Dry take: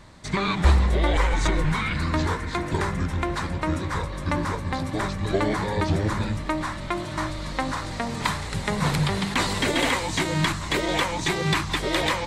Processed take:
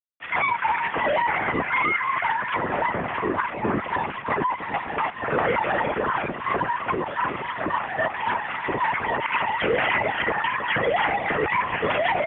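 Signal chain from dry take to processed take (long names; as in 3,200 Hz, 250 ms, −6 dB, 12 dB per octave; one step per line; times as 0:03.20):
three sine waves on the formant tracks
bit-depth reduction 6 bits, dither none
soft clipping −23.5 dBFS, distortion −9 dB
granular cloud, spray 35 ms, pitch spread up and down by 0 semitones
single-tap delay 316 ms −9.5 dB
linear-prediction vocoder at 8 kHz whisper
single-sideband voice off tune −79 Hz 190–2,900 Hz
level +6 dB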